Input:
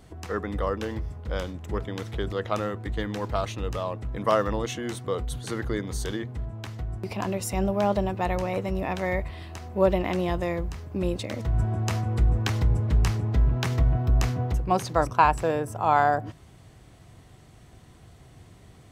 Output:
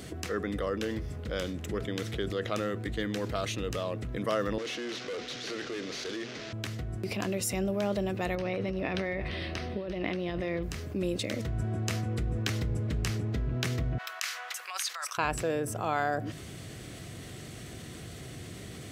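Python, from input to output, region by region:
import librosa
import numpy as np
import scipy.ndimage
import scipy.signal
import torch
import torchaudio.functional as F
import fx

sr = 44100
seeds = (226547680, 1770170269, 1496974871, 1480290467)

y = fx.chain(x, sr, fx.delta_mod(bps=32000, step_db=-40.0),
    fx.highpass(hz=330.0, slope=12),
    fx.tube_stage(drive_db=35.0, bias=0.4), at=(4.58, 6.53))
y = fx.chain(y, sr, fx.savgol(points=15),
    fx.over_compress(threshold_db=-31.0, ratio=-1.0),
    fx.echo_single(ms=345, db=-15.0), at=(8.35, 10.63))
y = fx.chain(y, sr, fx.cheby2_highpass(hz=240.0, order=4, stop_db=70),
    fx.over_compress(threshold_db=-36.0, ratio=-1.0), at=(13.98, 15.18))
y = fx.highpass(y, sr, hz=210.0, slope=6)
y = fx.peak_eq(y, sr, hz=910.0, db=-13.0, octaves=0.81)
y = fx.env_flatten(y, sr, amount_pct=50)
y = y * 10.0 ** (-3.0 / 20.0)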